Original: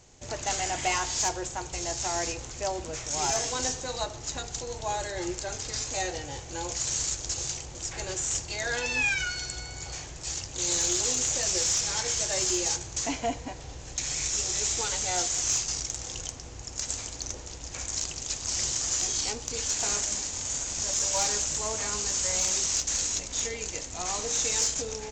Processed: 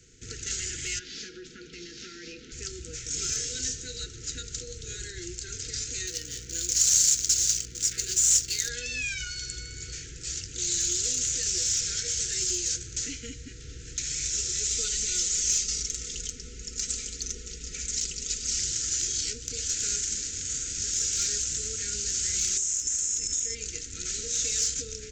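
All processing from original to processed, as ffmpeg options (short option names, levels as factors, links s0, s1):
-filter_complex "[0:a]asettb=1/sr,asplit=3[s0][s1][s2];[s0]atrim=end=0.994[s3];[s1]atrim=start=0.99:end=2.52,asetpts=PTS-STARTPTS,afade=t=in:d=0.004:c=qsin,afade=t=out:st=1.526:d=0.004:c=qsin,lowpass=f=4500:w=0.5412,lowpass=f=4500:w=1.3066,acompressor=threshold=0.0224:ratio=2.5:attack=3.2:release=140:knee=1:detection=peak,lowshelf=f=140:t=q:w=3:g=-12.5[s4];[s2]atrim=start=2.516[s5];[s3][s4]acrossfade=d=0.004:c1=hsin:c2=qsin[s6];[s6][s5]acrossfade=d=0.004:c1=qsin:c2=hsin,asettb=1/sr,asplit=3[s7][s8][s9];[s7]atrim=end=6.074[s10];[s8]atrim=start=6.07:end=8.69,asetpts=PTS-STARTPTS,afade=t=in:d=0.004:c=qsin,afade=t=out:st=2.616:d=0.004:c=qsin,bass=f=250:g=-7,treble=f=4000:g=13,adynamicsmooth=sensitivity=6.5:basefreq=2300,aeval=exprs='val(0)+0.00501*(sin(2*PI*60*n/s)+sin(2*PI*2*60*n/s)/2+sin(2*PI*3*60*n/s)/3+sin(2*PI*4*60*n/s)/4+sin(2*PI*5*60*n/s)/5)':c=same[s11];[s9]atrim=start=8.686[s12];[s10][s11]acrossfade=d=0.004:c1=hsin:c2=qsin[s13];[s13][s12]acrossfade=d=0.004:c1=qsin:c2=hsin,asettb=1/sr,asplit=3[s14][s15][s16];[s14]atrim=end=14.704[s17];[s15]atrim=start=14.7:end=18.59,asetpts=PTS-STARTPTS,afade=t=in:d=0.004:c=qsin,afade=t=out:st=3.886:d=0.004:c=qsin,bandreject=f=1600:w=7,aecho=1:1:4.7:0.75,atrim=end_sample=171549[s18];[s16]atrim=start=18.586[s19];[s17][s18]acrossfade=d=0.004:c1=hsin:c2=qsin[s20];[s20][s19]acrossfade=d=0.004:c1=qsin:c2=hsin,asettb=1/sr,asplit=3[s21][s22][s23];[s21]atrim=end=22.574[s24];[s22]atrim=start=22.57:end=23.55,asetpts=PTS-STARTPTS,afade=t=in:d=0.004:c=qsin,afade=t=out:st=0.976:d=0.004:c=qsin,highshelf=f=5700:t=q:w=3:g=7,aeval=exprs='val(0)+0.02*sin(2*PI*5300*n/s)':c=same,acompressor=threshold=0.0631:ratio=12:attack=3.2:release=140:knee=1:detection=peak[s25];[s23]atrim=start=23.546[s26];[s24][s25]acrossfade=d=0.004:c1=hsin:c2=qsin[s27];[s27][s26]acrossfade=d=0.004:c1=qsin:c2=hsin,afftfilt=real='re*(1-between(b*sr/4096,500,1300))':imag='im*(1-between(b*sr/4096,500,1300))':win_size=4096:overlap=0.75,acrossover=split=130|3000[s28][s29][s30];[s29]acompressor=threshold=0.00398:ratio=2[s31];[s28][s31][s30]amix=inputs=3:normalize=0"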